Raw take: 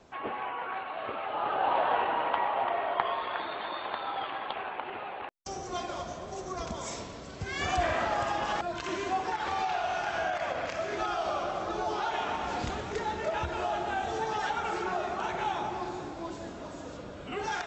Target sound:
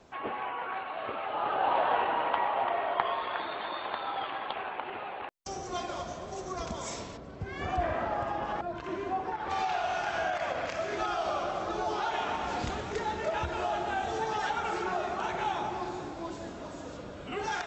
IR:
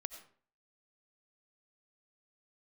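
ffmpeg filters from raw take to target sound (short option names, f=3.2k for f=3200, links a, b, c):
-filter_complex "[0:a]asplit=3[a][b][c];[a]afade=t=out:st=7.16:d=0.02[d];[b]lowpass=f=1k:p=1,afade=t=in:st=7.16:d=0.02,afade=t=out:st=9.49:d=0.02[e];[c]afade=t=in:st=9.49:d=0.02[f];[d][e][f]amix=inputs=3:normalize=0"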